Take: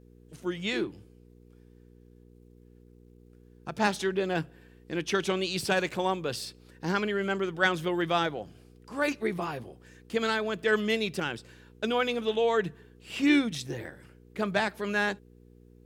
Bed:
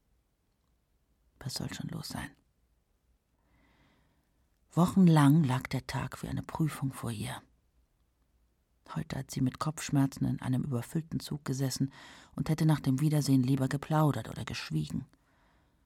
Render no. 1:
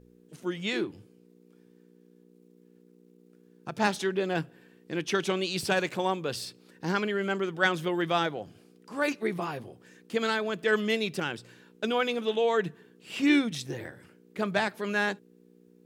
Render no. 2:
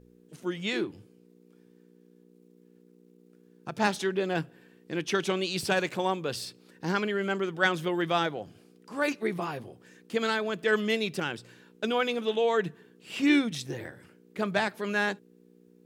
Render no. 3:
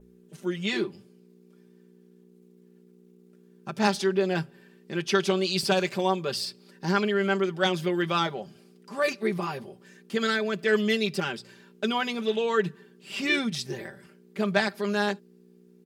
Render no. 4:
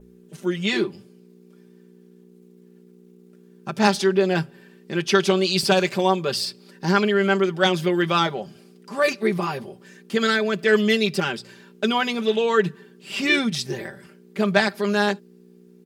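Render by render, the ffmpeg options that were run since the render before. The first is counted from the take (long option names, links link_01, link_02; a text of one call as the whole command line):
ffmpeg -i in.wav -af "bandreject=frequency=60:width_type=h:width=4,bandreject=frequency=120:width_type=h:width=4" out.wav
ffmpeg -i in.wav -af anull out.wav
ffmpeg -i in.wav -af "aecho=1:1:5.1:0.73,adynamicequalizer=threshold=0.00178:dfrequency=4800:dqfactor=5:tfrequency=4800:tqfactor=5:attack=5:release=100:ratio=0.375:range=4:mode=boostabove:tftype=bell" out.wav
ffmpeg -i in.wav -af "volume=5.5dB" out.wav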